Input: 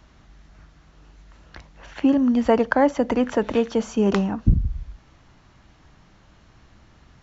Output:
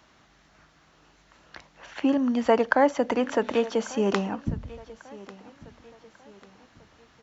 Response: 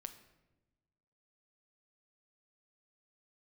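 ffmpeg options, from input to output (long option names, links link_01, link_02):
-filter_complex "[0:a]highpass=frequency=410:poles=1,asplit=2[link_01][link_02];[link_02]aecho=0:1:1144|2288|3432:0.1|0.041|0.0168[link_03];[link_01][link_03]amix=inputs=2:normalize=0"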